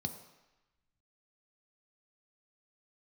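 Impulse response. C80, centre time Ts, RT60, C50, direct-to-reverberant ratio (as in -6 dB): 11.5 dB, 15 ms, 1.0 s, 10.0 dB, 6.0 dB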